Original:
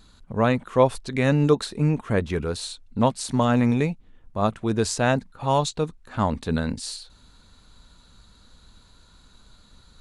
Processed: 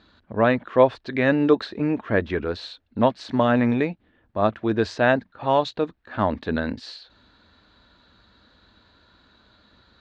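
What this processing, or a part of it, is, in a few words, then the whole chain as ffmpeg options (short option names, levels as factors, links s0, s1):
guitar cabinet: -af "highpass=87,equalizer=f=150:t=q:w=4:g=-10,equalizer=f=320:t=q:w=4:g=5,equalizer=f=620:t=q:w=4:g=5,equalizer=f=1700:t=q:w=4:g=7,lowpass=f=4200:w=0.5412,lowpass=f=4200:w=1.3066"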